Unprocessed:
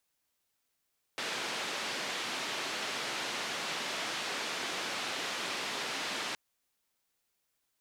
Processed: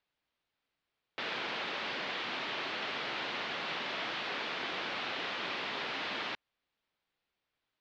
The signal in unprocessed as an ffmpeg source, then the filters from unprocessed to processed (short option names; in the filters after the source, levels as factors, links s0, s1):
-f lavfi -i "anoisesrc=c=white:d=5.17:r=44100:seed=1,highpass=f=220,lowpass=f=3900,volume=-24.3dB"
-af "lowpass=f=4000:w=0.5412,lowpass=f=4000:w=1.3066"